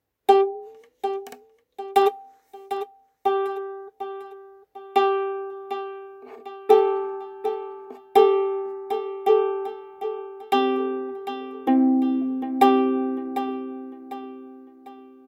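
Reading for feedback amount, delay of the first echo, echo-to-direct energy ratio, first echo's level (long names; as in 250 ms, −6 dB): 39%, 749 ms, −10.5 dB, −11.0 dB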